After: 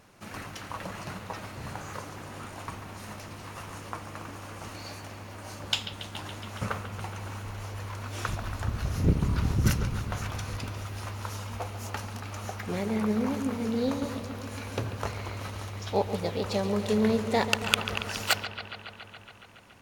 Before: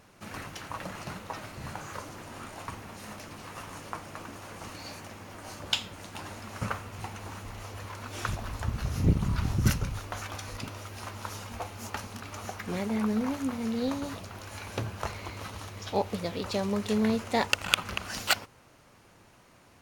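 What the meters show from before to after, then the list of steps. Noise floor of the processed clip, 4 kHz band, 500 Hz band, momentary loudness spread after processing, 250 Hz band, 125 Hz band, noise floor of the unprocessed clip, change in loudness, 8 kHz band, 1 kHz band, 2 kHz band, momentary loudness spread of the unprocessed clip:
-48 dBFS, +0.5 dB, +3.0 dB, 15 LU, +1.0 dB, +2.0 dB, -58 dBFS, +1.5 dB, 0.0 dB, +1.0 dB, +0.5 dB, 15 LU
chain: dynamic EQ 460 Hz, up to +4 dB, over -46 dBFS, Q 2.8; on a send: analogue delay 0.14 s, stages 4096, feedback 78%, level -11.5 dB

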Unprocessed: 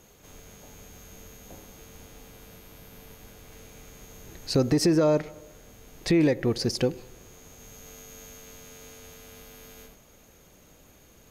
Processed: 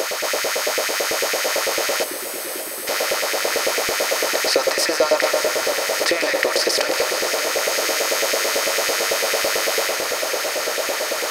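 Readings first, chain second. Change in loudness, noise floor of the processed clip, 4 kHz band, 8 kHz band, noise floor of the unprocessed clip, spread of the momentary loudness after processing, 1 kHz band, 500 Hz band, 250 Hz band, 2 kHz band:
+5.0 dB, -28 dBFS, +18.5 dB, +20.5 dB, -56 dBFS, 4 LU, +19.5 dB, +10.5 dB, -4.5 dB, +22.5 dB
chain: per-bin compression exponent 0.4; RIAA curve recording; spectral delete 2.04–2.87, 400–7700 Hz; tone controls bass +1 dB, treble -10 dB; in parallel at +0.5 dB: negative-ratio compressor -28 dBFS, ratio -0.5; on the sum: LFO high-pass saw up 9 Hz 440–2300 Hz; warbling echo 0.578 s, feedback 77%, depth 91 cents, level -11.5 dB; gain +2 dB

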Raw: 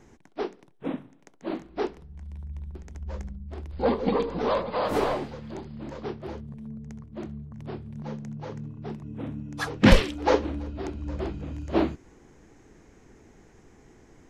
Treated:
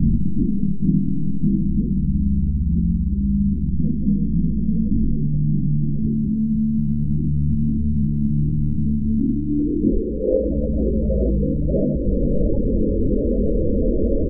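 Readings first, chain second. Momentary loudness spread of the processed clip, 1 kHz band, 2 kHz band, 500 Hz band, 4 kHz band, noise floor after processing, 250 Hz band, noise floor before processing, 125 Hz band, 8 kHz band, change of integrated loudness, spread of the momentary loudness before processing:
1 LU, under -25 dB, under -40 dB, +4.0 dB, under -40 dB, -22 dBFS, +12.0 dB, -56 dBFS, +14.0 dB, under -30 dB, +8.5 dB, 15 LU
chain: per-bin compression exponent 0.4; bell 110 Hz -7 dB 0.25 oct; on a send: echo 0.656 s -19.5 dB; on the sum: compressor 2.5:1, threshold -23 dBFS, peak gain reduction 10.5 dB; low-pass sweep 190 Hz -> 590 Hz, 8.94–10.47; chorus voices 2, 0.18 Hz, delay 22 ms, depth 3.4 ms; steep low-pass 870 Hz 48 dB/oct; loudest bins only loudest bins 16; low shelf 460 Hz +9 dB; vocal rider 0.5 s

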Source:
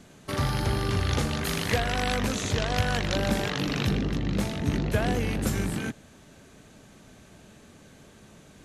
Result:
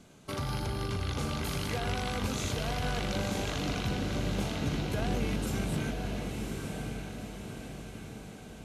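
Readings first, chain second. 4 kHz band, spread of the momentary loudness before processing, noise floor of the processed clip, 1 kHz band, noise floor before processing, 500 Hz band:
-5.5 dB, 3 LU, -47 dBFS, -5.0 dB, -53 dBFS, -5.0 dB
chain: notch 1800 Hz, Q 7.1; limiter -20 dBFS, peak gain reduction 9 dB; on a send: diffused feedback echo 1.023 s, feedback 54%, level -4 dB; on the sum: gain -4.5 dB

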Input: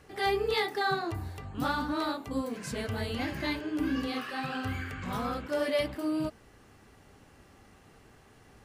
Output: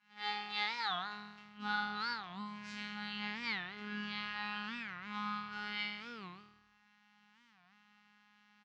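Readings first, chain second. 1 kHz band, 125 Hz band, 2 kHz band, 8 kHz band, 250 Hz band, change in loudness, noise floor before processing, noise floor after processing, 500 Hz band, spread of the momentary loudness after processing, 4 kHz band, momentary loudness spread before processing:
-7.0 dB, -16.5 dB, -3.5 dB, under -15 dB, -13.5 dB, -7.5 dB, -58 dBFS, -69 dBFS, -24.0 dB, 9 LU, -2.5 dB, 7 LU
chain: Chebyshev band-stop 300–810 Hz, order 4; reverb removal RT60 1.4 s; tilt shelf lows -7 dB, about 1300 Hz; overloaded stage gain 24.5 dB; robotiser 208 Hz; resonator bank E3 major, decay 0.75 s; in parallel at -7 dB: crossover distortion -59.5 dBFS; on the sum: BPF 110–5800 Hz; air absorption 200 m; on a send: frequency-shifting echo 0.101 s, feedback 52%, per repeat -39 Hz, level -19.5 dB; on the sum: record warp 45 rpm, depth 250 cents; gain +11 dB

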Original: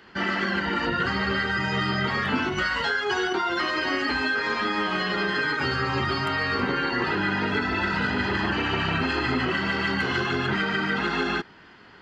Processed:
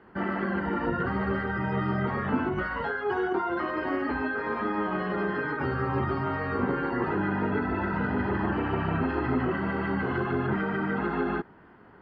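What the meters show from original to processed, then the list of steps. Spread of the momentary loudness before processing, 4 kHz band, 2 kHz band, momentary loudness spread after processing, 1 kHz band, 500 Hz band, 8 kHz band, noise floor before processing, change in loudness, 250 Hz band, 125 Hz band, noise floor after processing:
1 LU, -19.5 dB, -8.0 dB, 2 LU, -3.0 dB, 0.0 dB, under -30 dB, -50 dBFS, -4.0 dB, 0.0 dB, 0.0 dB, -53 dBFS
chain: LPF 1100 Hz 12 dB/oct

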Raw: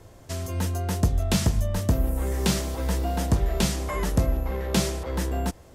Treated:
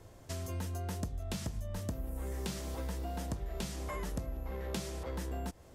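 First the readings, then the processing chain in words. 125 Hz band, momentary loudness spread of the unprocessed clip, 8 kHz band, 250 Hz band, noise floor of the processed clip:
-13.5 dB, 5 LU, -14.0 dB, -14.0 dB, -56 dBFS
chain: compressor, threshold -29 dBFS, peak gain reduction 13 dB; gain -6 dB

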